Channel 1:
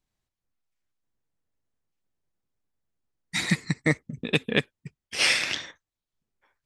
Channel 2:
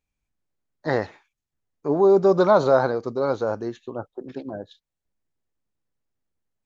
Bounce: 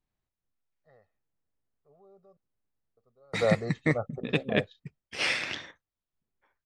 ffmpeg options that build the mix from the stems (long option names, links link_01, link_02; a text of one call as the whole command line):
ffmpeg -i stem1.wav -i stem2.wav -filter_complex "[0:a]volume=-2dB,asplit=2[link_01][link_02];[1:a]aecho=1:1:1.6:0.99,alimiter=limit=-10dB:level=0:latency=1:release=252,volume=-3.5dB,asplit=3[link_03][link_04][link_05];[link_03]atrim=end=2.37,asetpts=PTS-STARTPTS,afade=type=out:start_time=2.366:duration=0.004:curve=hsin[link_06];[link_04]atrim=start=2.37:end=2.97,asetpts=PTS-STARTPTS,volume=0[link_07];[link_05]atrim=start=2.97,asetpts=PTS-STARTPTS,afade=type=in:duration=0.004:curve=hsin[link_08];[link_06][link_07][link_08]concat=n=3:v=0:a=1[link_09];[link_02]apad=whole_len=293463[link_10];[link_09][link_10]sidechaingate=range=-36dB:threshold=-55dB:ratio=16:detection=peak[link_11];[link_01][link_11]amix=inputs=2:normalize=0,lowpass=frequency=2200:poles=1" out.wav